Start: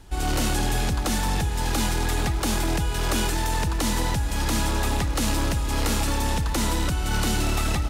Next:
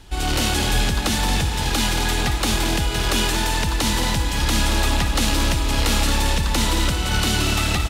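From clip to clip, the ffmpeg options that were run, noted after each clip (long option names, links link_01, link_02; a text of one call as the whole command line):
ffmpeg -i in.wav -filter_complex "[0:a]equalizer=frequency=3300:width=0.91:gain=6.5,asplit=2[link_01][link_02];[link_02]aecho=0:1:174.9|227.4:0.316|0.355[link_03];[link_01][link_03]amix=inputs=2:normalize=0,volume=2dB" out.wav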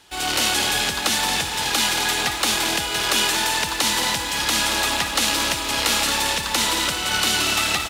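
ffmpeg -i in.wav -filter_complex "[0:a]highpass=frequency=760:poles=1,asplit=2[link_01][link_02];[link_02]acrusher=bits=6:mix=0:aa=0.000001,volume=-6dB[link_03];[link_01][link_03]amix=inputs=2:normalize=0" out.wav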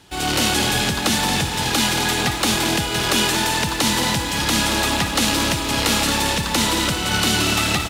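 ffmpeg -i in.wav -af "equalizer=frequency=130:width_type=o:width=3:gain=12.5" out.wav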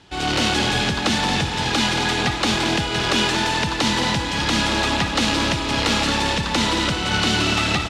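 ffmpeg -i in.wav -af "lowpass=5300" out.wav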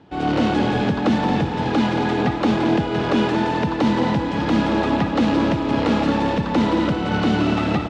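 ffmpeg -i in.wav -af "bandpass=frequency=310:width_type=q:width=0.7:csg=0,bandreject=frequency=380:width=12,volume=6.5dB" out.wav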